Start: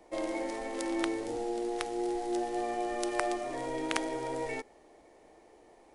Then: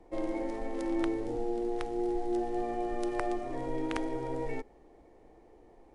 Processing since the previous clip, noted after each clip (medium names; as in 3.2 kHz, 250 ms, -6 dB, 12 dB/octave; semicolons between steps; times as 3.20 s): tilt EQ -3 dB/octave; band-stop 620 Hz, Q 12; trim -3 dB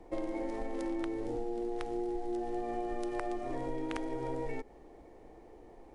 compression, threshold -36 dBFS, peak gain reduction 9.5 dB; trim +3.5 dB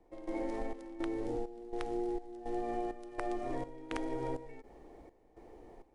trance gate "...xxxxx" 165 bpm -12 dB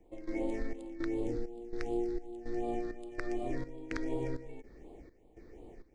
phase shifter stages 6, 2.7 Hz, lowest notch 760–1600 Hz; trim +3.5 dB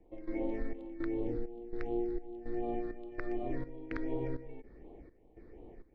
distance through air 310 m